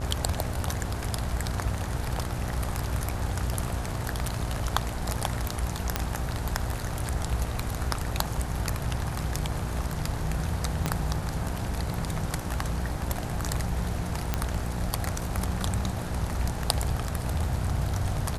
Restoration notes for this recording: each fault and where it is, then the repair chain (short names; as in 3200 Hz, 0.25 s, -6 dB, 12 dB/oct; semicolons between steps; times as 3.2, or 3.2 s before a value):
buzz 60 Hz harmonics 18 -34 dBFS
5.96 pop -8 dBFS
10.86 pop -11 dBFS
14.34 pop -10 dBFS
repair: de-click; de-hum 60 Hz, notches 18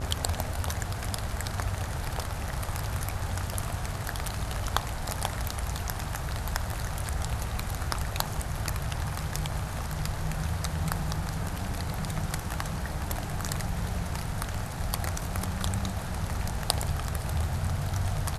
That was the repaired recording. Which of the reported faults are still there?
10.86 pop